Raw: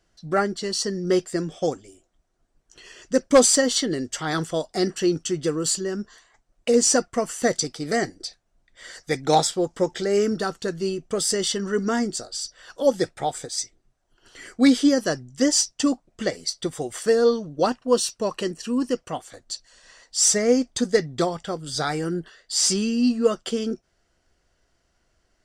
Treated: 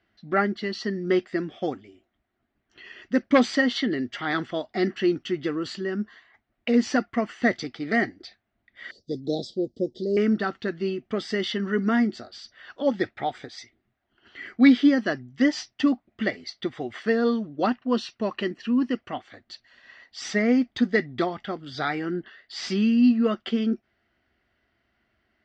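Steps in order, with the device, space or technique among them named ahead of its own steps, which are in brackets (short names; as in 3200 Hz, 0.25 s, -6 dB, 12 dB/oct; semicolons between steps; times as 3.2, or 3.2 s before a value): guitar cabinet (speaker cabinet 80–3600 Hz, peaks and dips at 160 Hz -9 dB, 220 Hz +6 dB, 500 Hz -9 dB, 960 Hz -4 dB, 2000 Hz +6 dB); 8.91–10.17 elliptic band-stop 530–4300 Hz, stop band 40 dB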